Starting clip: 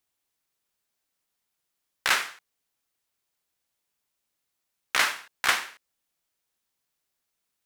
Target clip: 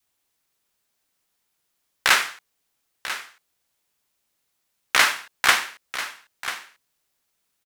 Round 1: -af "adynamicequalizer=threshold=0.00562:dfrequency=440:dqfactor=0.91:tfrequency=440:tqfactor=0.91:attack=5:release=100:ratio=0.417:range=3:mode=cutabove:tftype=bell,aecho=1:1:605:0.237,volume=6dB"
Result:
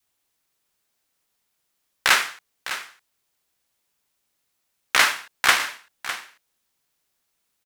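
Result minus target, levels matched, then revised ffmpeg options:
echo 387 ms early
-af "adynamicequalizer=threshold=0.00562:dfrequency=440:dqfactor=0.91:tfrequency=440:tqfactor=0.91:attack=5:release=100:ratio=0.417:range=3:mode=cutabove:tftype=bell,aecho=1:1:992:0.237,volume=6dB"

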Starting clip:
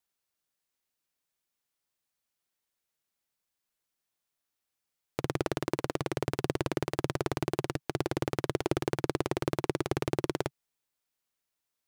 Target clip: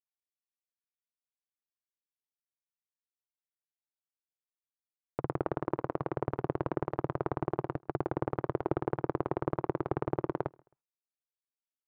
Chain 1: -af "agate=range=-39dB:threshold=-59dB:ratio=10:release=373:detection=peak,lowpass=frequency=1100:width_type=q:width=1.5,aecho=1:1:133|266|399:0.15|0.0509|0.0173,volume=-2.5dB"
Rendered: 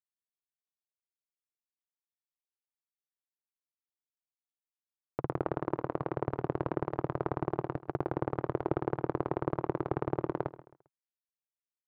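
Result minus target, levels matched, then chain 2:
echo-to-direct +11.5 dB
-af "agate=range=-39dB:threshold=-59dB:ratio=10:release=373:detection=peak,lowpass=frequency=1100:width_type=q:width=1.5,aecho=1:1:133|266:0.0398|0.0135,volume=-2.5dB"

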